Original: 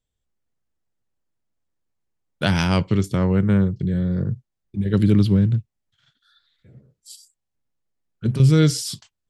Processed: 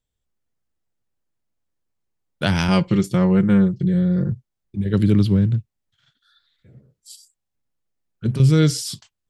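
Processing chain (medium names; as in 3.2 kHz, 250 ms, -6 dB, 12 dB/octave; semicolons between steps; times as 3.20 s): 2.68–4.32 s: comb 5.7 ms, depth 74%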